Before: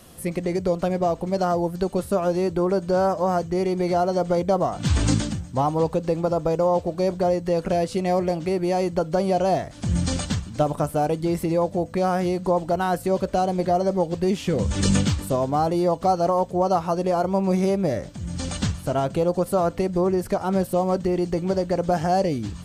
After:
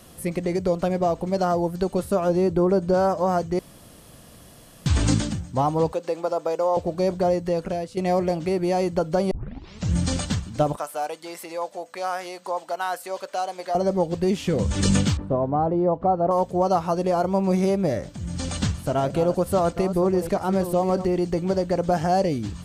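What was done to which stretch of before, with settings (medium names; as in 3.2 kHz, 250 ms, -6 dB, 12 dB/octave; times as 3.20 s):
2.29–2.94 s: tilt shelf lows +3.5 dB, about 760 Hz
3.59–4.86 s: room tone
5.92–6.77 s: high-pass 450 Hz
7.40–7.97 s: fade out, to -12 dB
9.31 s: tape start 0.62 s
10.76–13.75 s: high-pass 800 Hz
15.17–16.31 s: low-pass 1.1 kHz
17.87–21.06 s: chunks repeated in reverse 619 ms, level -11 dB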